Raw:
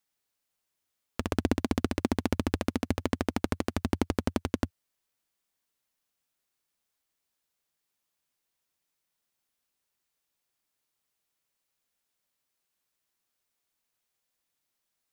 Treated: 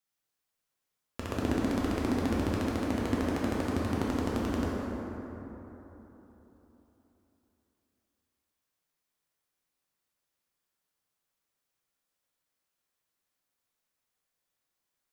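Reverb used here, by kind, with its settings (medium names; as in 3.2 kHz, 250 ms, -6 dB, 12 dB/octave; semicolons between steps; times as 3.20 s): plate-style reverb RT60 3.8 s, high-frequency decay 0.4×, DRR -5.5 dB; trim -7 dB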